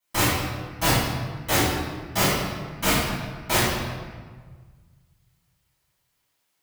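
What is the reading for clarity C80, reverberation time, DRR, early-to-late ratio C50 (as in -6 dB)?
0.5 dB, 1.5 s, -13.0 dB, -2.5 dB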